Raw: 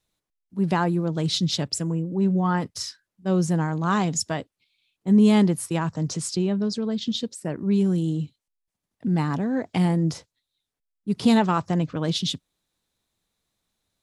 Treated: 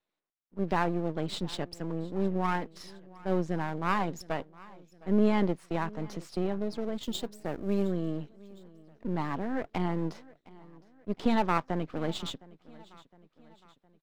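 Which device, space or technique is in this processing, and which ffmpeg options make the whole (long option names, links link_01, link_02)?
crystal radio: -filter_complex "[0:a]highpass=280,lowpass=2500,aeval=exprs='if(lt(val(0),0),0.251*val(0),val(0))':channel_layout=same,asettb=1/sr,asplit=3[link_01][link_02][link_03];[link_01]atrim=end=7.034[link_04];[link_02]atrim=start=7.03:end=7.88,asetpts=PTS-STARTPTS,afade=type=in:duration=0.004:curve=qsin,afade=type=out:start_time=0.846:duration=0.004:curve=qsin,aemphasis=mode=production:type=50kf[link_05];[link_03]atrim=start=7.876[link_06];[link_04][link_05]acrossfade=duration=0.004:curve1=hsin:curve2=qsin[link_07];[link_07][link_06]acrossfade=duration=0.004:curve1=qsin:curve2=hsin,aecho=1:1:712|1424|2136|2848:0.0794|0.0405|0.0207|0.0105"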